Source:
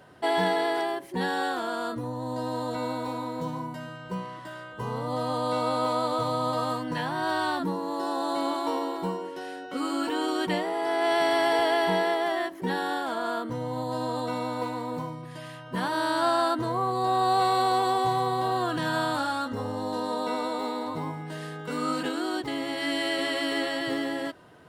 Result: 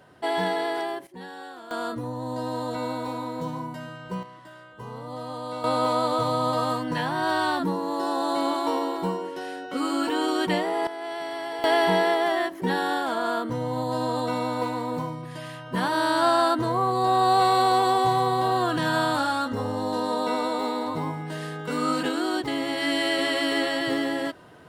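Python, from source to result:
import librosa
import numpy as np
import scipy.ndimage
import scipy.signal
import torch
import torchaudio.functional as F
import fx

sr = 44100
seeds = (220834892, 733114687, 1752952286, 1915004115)

y = fx.gain(x, sr, db=fx.steps((0.0, -1.0), (1.07, -12.0), (1.71, 1.0), (4.23, -6.0), (5.64, 3.0), (10.87, -9.0), (11.64, 3.5)))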